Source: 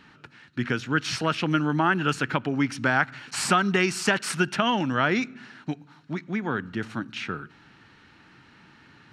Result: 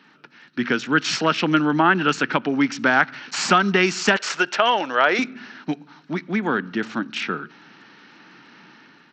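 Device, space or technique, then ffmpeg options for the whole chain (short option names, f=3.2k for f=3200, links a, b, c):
Bluetooth headset: -filter_complex "[0:a]asettb=1/sr,asplit=3[a][b][c];[a]atrim=end=4.164[d];[b]atrim=start=4.16:end=5.19,asetpts=PTS-STARTPTS,afade=t=in:d=0.004:c=qsin,afade=t=out:st=1.026:d=0.004:c=qsin,lowshelf=f=330:t=q:w=1.5:g=-13[e];[c]atrim=start=5.186[f];[d][e]acrossfade=d=0.004:c1=hsin:c2=qsin[g];[g][f]acrossfade=d=0.004:c1=qsin:c2=hsin,highpass=f=180:w=0.5412,highpass=f=180:w=1.3066,dynaudnorm=f=130:g=7:m=6.5dB,aresample=16000,aresample=44100" -ar 32000 -c:a sbc -b:a 64k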